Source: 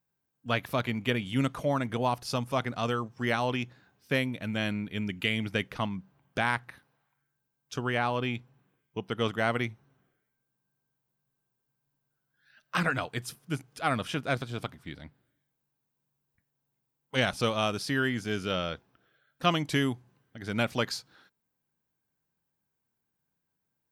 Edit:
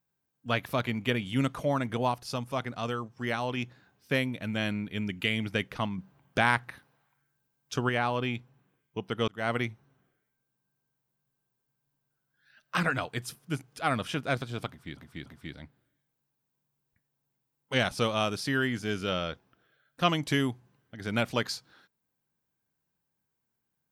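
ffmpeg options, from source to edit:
-filter_complex "[0:a]asplit=8[s0][s1][s2][s3][s4][s5][s6][s7];[s0]atrim=end=2.122[s8];[s1]atrim=start=2.118:end=3.572,asetpts=PTS-STARTPTS,volume=0.708[s9];[s2]atrim=start=3.568:end=5.982[s10];[s3]atrim=start=5.978:end=7.892,asetpts=PTS-STARTPTS,volume=1.5[s11];[s4]atrim=start=7.888:end=9.28,asetpts=PTS-STARTPTS,afade=t=out:st=1.388:d=0.004:c=hsin[s12];[s5]atrim=start=9.28:end=14.972,asetpts=PTS-STARTPTS,afade=t=in:d=0.25[s13];[s6]atrim=start=14.678:end=14.972[s14];[s7]atrim=start=14.678[s15];[s8][s9]acrossfade=d=0.004:c1=hsin:c2=hsin[s16];[s16][s10]acrossfade=d=0.004:c1=hsin:c2=hsin[s17];[s17][s11]acrossfade=d=0.004:c1=hsin:c2=hsin[s18];[s12][s13]concat=n=2:v=0:a=1[s19];[s18][s19]acrossfade=d=0.004:c1=hsin:c2=hsin[s20];[s20][s14]acrossfade=d=0.004:c1=hsin:c2=hsin[s21];[s21][s15]acrossfade=d=0.004:c1=hsin:c2=hsin"

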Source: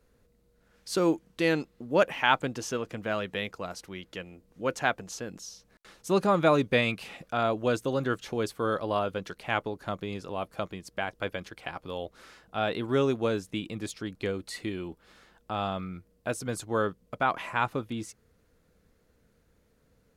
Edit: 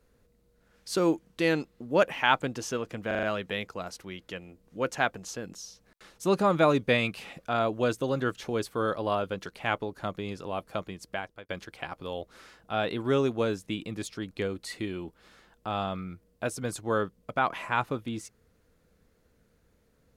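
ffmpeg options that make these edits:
-filter_complex "[0:a]asplit=6[s0][s1][s2][s3][s4][s5];[s0]atrim=end=3.112[s6];[s1]atrim=start=3.068:end=3.112[s7];[s2]atrim=start=3.068:end=3.112[s8];[s3]atrim=start=3.068:end=3.112[s9];[s4]atrim=start=3.068:end=11.33,asetpts=PTS-STARTPTS,afade=t=out:st=7.852:d=0.41[s10];[s5]atrim=start=11.33,asetpts=PTS-STARTPTS,afade=t=in:d=0.004:c=hsin[s11];[s6][s7]acrossfade=d=0.004:c1=hsin:c2=hsin[s12];[s12][s8]acrossfade=d=0.004:c1=hsin:c2=hsin[s13];[s13][s9]acrossfade=d=0.004:c1=hsin:c2=hsin[s14];[s10][s11]concat=n=2:v=0:a=1[s15];[s14][s15]acrossfade=d=0.004:c1=hsin:c2=hsin"

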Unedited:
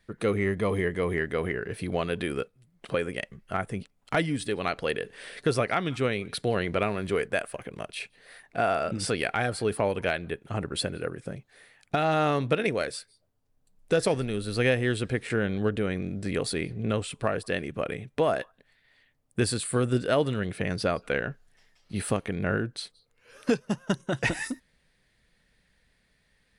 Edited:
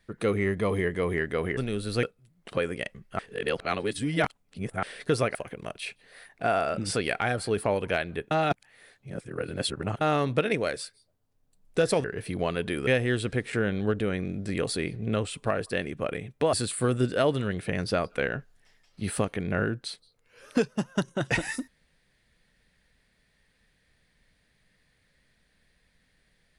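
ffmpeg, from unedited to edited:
-filter_complex "[0:a]asplit=11[s0][s1][s2][s3][s4][s5][s6][s7][s8][s9][s10];[s0]atrim=end=1.572[s11];[s1]atrim=start=14.178:end=14.642[s12];[s2]atrim=start=2.398:end=3.562[s13];[s3]atrim=start=3.558:end=5.202,asetpts=PTS-STARTPTS,areverse[s14];[s4]atrim=start=5.198:end=5.722[s15];[s5]atrim=start=7.488:end=10.452[s16];[s6]atrim=start=10.448:end=12.152,asetpts=PTS-STARTPTS,areverse[s17];[s7]atrim=start=12.148:end=14.182[s18];[s8]atrim=start=1.568:end=2.402[s19];[s9]atrim=start=14.638:end=18.302[s20];[s10]atrim=start=19.448[s21];[s11][s12]acrossfade=d=0.004:c1=hsin:c2=hsin[s22];[s22][s13]acrossfade=d=0.004:c1=hsin:c2=hsin[s23];[s23][s14]acrossfade=d=0.004:c1=hsin:c2=hsin[s24];[s24][s15]acrossfade=d=0.004:c1=hsin:c2=hsin[s25];[s25][s16]acrossfade=d=0.004:c1=hsin:c2=hsin[s26];[s26][s17]acrossfade=d=0.004:c1=hsin:c2=hsin[s27];[s27][s18]acrossfade=d=0.004:c1=hsin:c2=hsin[s28];[s28][s19]acrossfade=d=0.004:c1=hsin:c2=hsin[s29];[s29][s20]acrossfade=d=0.004:c1=hsin:c2=hsin[s30];[s30][s21]acrossfade=d=0.004:c1=hsin:c2=hsin"

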